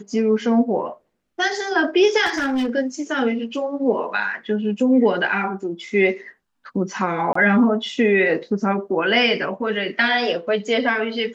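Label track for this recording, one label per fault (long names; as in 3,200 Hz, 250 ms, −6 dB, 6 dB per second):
2.250000	2.700000	clipping −17.5 dBFS
7.330000	7.350000	drop-out 24 ms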